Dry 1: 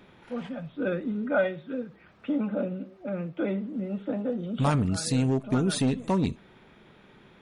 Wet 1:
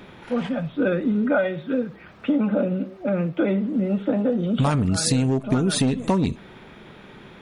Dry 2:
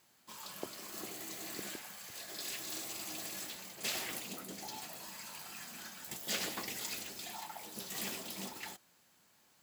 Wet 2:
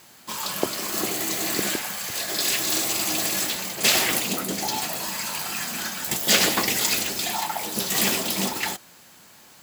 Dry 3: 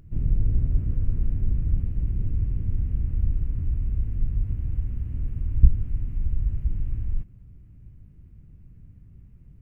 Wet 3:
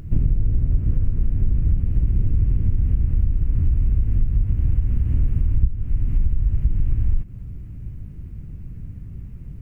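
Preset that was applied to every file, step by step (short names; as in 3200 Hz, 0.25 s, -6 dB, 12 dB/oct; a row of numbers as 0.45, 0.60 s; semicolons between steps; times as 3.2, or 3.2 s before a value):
compressor 12:1, threshold -27 dBFS; match loudness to -23 LUFS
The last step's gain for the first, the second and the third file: +10.0, +18.0, +13.5 dB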